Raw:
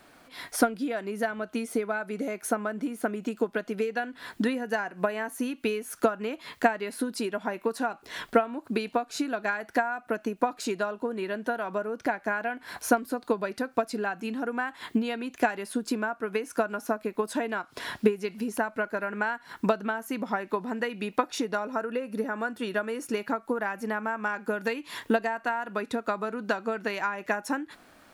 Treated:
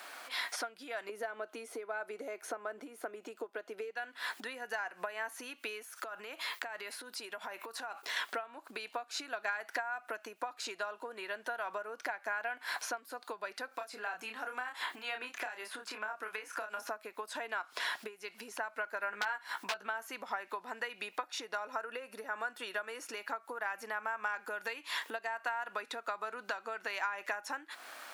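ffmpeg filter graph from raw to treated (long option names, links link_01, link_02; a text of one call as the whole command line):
ffmpeg -i in.wav -filter_complex "[0:a]asettb=1/sr,asplit=3[link_01][link_02][link_03];[link_01]atrim=end=1.094[link_04];[link_02]atrim=start=1.09:end=3.91,asetpts=PTS-STARTPTS,afade=type=in:duration=0.004:curve=qsin,afade=type=out:start_time=2.816:duration=0.004:curve=qsin,highpass=200,equalizer=frequency=350:width_type=o:width=2.1:gain=12.5[link_05];[link_03]atrim=start=3.906[link_06];[link_04][link_05]acrossfade=duration=0.004:curve1=hsin:curve2=qsin[link_07];[link_07][link_06]acrossfade=duration=0.004:curve1=qsin:curve2=hsin,asettb=1/sr,asplit=3[link_08][link_09][link_10];[link_08]atrim=end=5.834[link_11];[link_09]atrim=start=5.83:end=8.17,asetpts=PTS-STARTPTS,afade=type=in:duration=0.004:curve=qsin,afade=type=out:start_time=2.336:duration=0.004:curve=qsin,agate=range=-33dB:threshold=-53dB:ratio=3:release=100:detection=peak,highshelf=frequency=12000:gain=9,acompressor=threshold=-41dB:ratio=6:attack=3.2:release=140:knee=1:detection=peak[link_12];[link_10]atrim=start=8.166[link_13];[link_11][link_12]acrossfade=duration=0.004:curve1=hsin:curve2=qsin[link_14];[link_14][link_13]acrossfade=duration=0.004:curve1=qsin:curve2=hsin,asettb=1/sr,asplit=3[link_15][link_16][link_17];[link_15]atrim=end=13.684[link_18];[link_16]atrim=start=13.68:end=16.87,asetpts=PTS-STARTPTS,afade=type=in:duration=0.004:curve=qsin,afade=type=out:start_time=3.186:duration=0.004:curve=qsin,asplit=2[link_19][link_20];[link_20]adelay=28,volume=-5dB[link_21];[link_19][link_21]amix=inputs=2:normalize=0,atrim=end_sample=140679,acrossover=split=770|2800[link_22][link_23][link_24];[link_22]acompressor=threshold=-38dB:ratio=4[link_25];[link_23]acompressor=threshold=-40dB:ratio=4[link_26];[link_24]acompressor=threshold=-54dB:ratio=4[link_27];[link_25][link_26][link_27]amix=inputs=3:normalize=0[link_28];[link_17]atrim=start=16.866[link_29];[link_18][link_28]acrossfade=duration=0.004:curve1=hsin:curve2=qsin[link_30];[link_30][link_29]acrossfade=duration=0.004:curve1=qsin:curve2=hsin,asettb=1/sr,asplit=3[link_31][link_32][link_33];[link_31]atrim=end=19.014[link_34];[link_32]atrim=start=19.01:end=19.87,asetpts=PTS-STARTPTS,afade=type=in:duration=0.004:curve=qsin,afade=type=out:start_time=0.856:duration=0.004:curve=qsin,aeval=exprs='(mod(7.5*val(0)+1,2)-1)/7.5':channel_layout=same,asplit=2[link_35][link_36];[link_36]adelay=15,volume=-6dB[link_37];[link_35][link_37]amix=inputs=2:normalize=0,atrim=end_sample=37926[link_38];[link_33]atrim=start=19.866[link_39];[link_34][link_38]acrossfade=duration=0.004:curve1=hsin:curve2=qsin[link_40];[link_40][link_39]acrossfade=duration=0.004:curve1=qsin:curve2=hsin,acompressor=threshold=-43dB:ratio=4,highpass=800,acrossover=split=6300[link_41][link_42];[link_42]acompressor=threshold=-60dB:ratio=4:attack=1:release=60[link_43];[link_41][link_43]amix=inputs=2:normalize=0,volume=9.5dB" out.wav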